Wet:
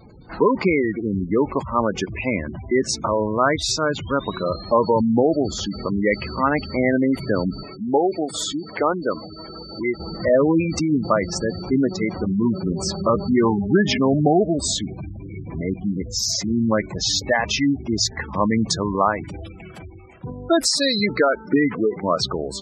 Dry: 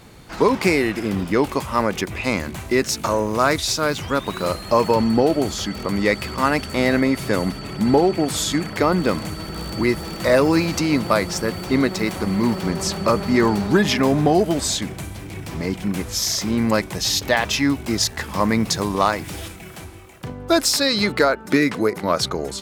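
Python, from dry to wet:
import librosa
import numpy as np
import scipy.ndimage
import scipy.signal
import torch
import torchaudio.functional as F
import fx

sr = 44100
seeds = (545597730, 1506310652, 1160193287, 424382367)

y = fx.spec_gate(x, sr, threshold_db=-15, keep='strong')
y = fx.bass_treble(y, sr, bass_db=-14, treble_db=-3, at=(7.63, 10.0))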